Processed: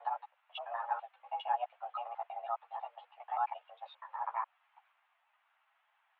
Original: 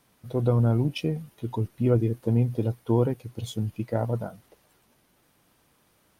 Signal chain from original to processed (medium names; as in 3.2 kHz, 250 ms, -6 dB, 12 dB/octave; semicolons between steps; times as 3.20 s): slices played last to first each 82 ms, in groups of 6; mistuned SSB +350 Hz 400–2700 Hz; three-phase chorus; trim -2.5 dB